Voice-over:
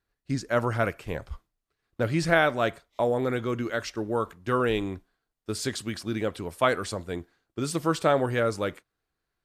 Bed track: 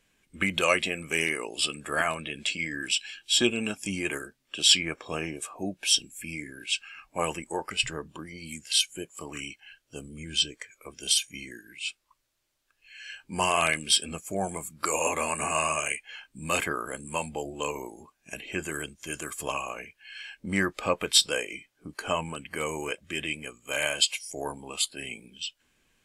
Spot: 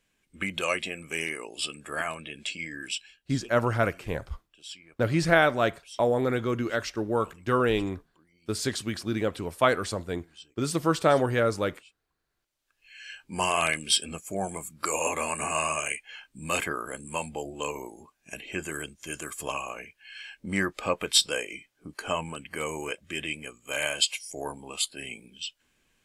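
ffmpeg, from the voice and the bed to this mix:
-filter_complex "[0:a]adelay=3000,volume=1dB[a];[1:a]volume=18dB,afade=t=out:st=2.88:d=0.31:silence=0.112202,afade=t=in:st=12.18:d=0.66:silence=0.0749894[b];[a][b]amix=inputs=2:normalize=0"

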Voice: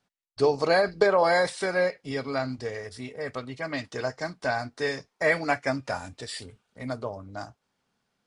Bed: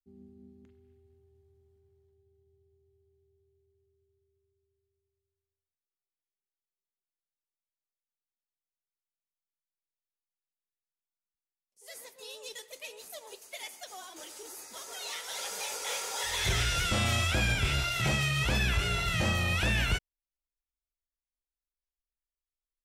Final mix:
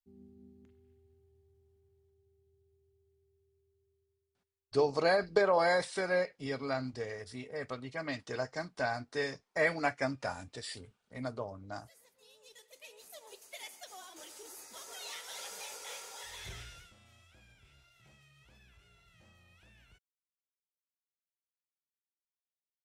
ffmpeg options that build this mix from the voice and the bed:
-filter_complex "[0:a]adelay=4350,volume=-6dB[a];[1:a]volume=9dB,afade=t=out:st=3.93:d=0.6:silence=0.211349,afade=t=in:st=12.39:d=1.04:silence=0.251189,afade=t=out:st=14.92:d=2.02:silence=0.0316228[b];[a][b]amix=inputs=2:normalize=0"

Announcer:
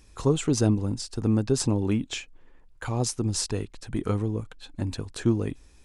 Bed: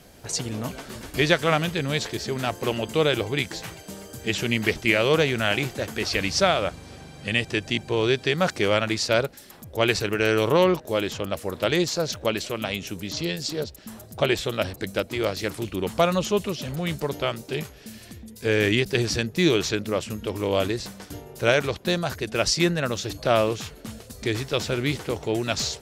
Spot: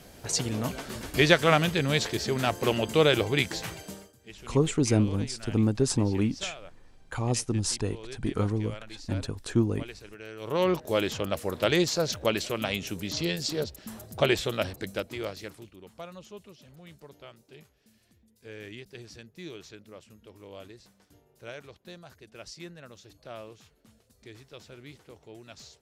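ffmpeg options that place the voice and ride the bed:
-filter_complex "[0:a]adelay=4300,volume=-1dB[a];[1:a]volume=20dB,afade=t=out:st=3.81:d=0.32:silence=0.0841395,afade=t=in:st=10.39:d=0.45:silence=0.1,afade=t=out:st=14.28:d=1.47:silence=0.0944061[b];[a][b]amix=inputs=2:normalize=0"

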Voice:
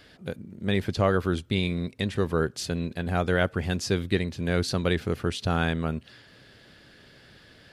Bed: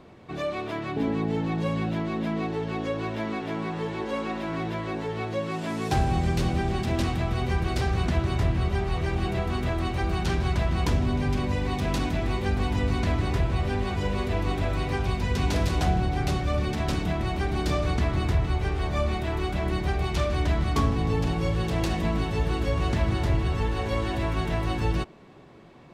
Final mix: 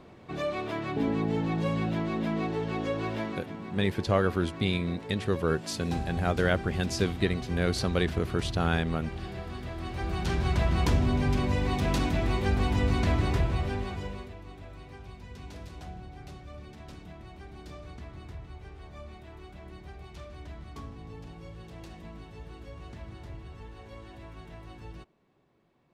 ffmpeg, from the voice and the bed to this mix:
-filter_complex "[0:a]adelay=3100,volume=-2dB[a];[1:a]volume=9dB,afade=t=out:st=3.17:d=0.3:silence=0.334965,afade=t=in:st=9.74:d=0.9:silence=0.298538,afade=t=out:st=13.26:d=1.09:silence=0.11885[b];[a][b]amix=inputs=2:normalize=0"

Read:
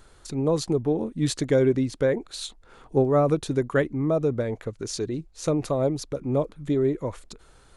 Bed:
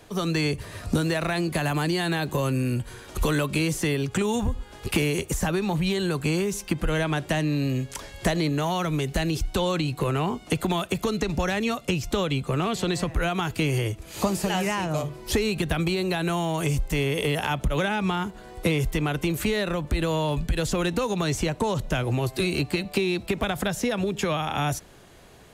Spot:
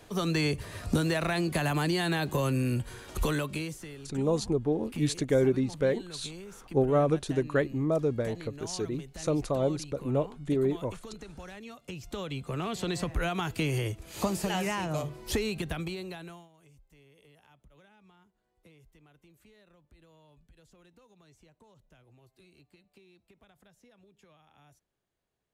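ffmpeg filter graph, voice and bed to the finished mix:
-filter_complex "[0:a]adelay=3800,volume=-4dB[a];[1:a]volume=11.5dB,afade=t=out:st=3.1:d=0.76:silence=0.149624,afade=t=in:st=11.74:d=1.36:silence=0.188365,afade=t=out:st=15.25:d=1.24:silence=0.0316228[b];[a][b]amix=inputs=2:normalize=0"

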